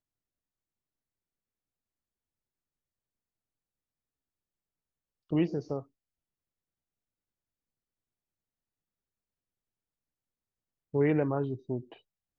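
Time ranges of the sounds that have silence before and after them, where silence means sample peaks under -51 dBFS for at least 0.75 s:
5.31–5.83

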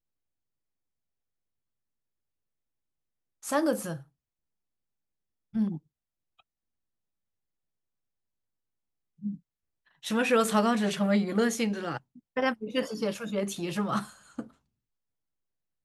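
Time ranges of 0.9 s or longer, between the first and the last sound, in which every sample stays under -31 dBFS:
3.96–5.55
5.76–9.25

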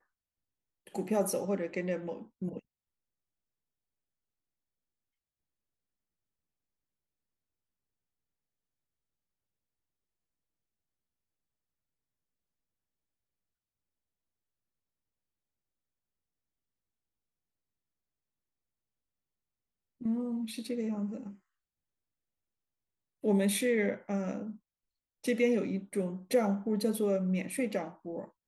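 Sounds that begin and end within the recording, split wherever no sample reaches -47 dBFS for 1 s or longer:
20.01–21.35

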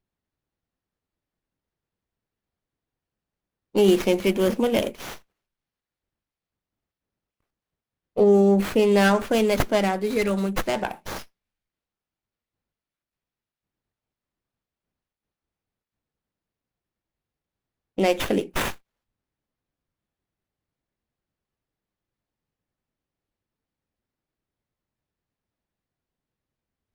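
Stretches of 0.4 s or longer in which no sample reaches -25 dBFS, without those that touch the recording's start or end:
5.09–8.17
11.17–17.98

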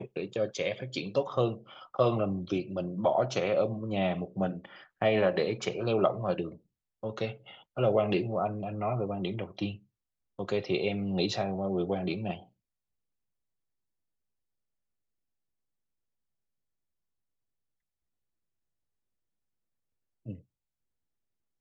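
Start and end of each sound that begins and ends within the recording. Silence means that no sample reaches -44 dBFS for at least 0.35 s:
7.03–9.76
10.39–12.43
20.26–20.39

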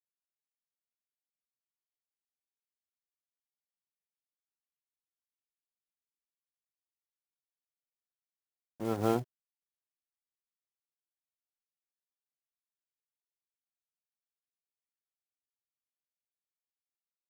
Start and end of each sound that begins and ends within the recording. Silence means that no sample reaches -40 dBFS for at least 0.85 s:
8.81–9.23

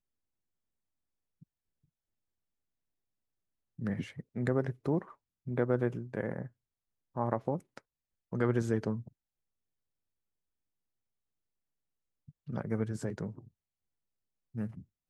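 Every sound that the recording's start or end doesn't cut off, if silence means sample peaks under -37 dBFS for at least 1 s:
3.79–9.01
12.49–13.39

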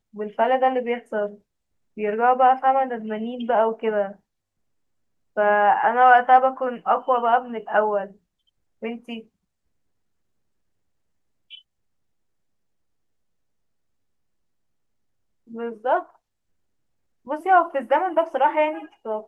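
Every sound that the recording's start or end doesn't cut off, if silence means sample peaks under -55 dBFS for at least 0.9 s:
5.36–9.27
11.5–11.62
15.47–16.17

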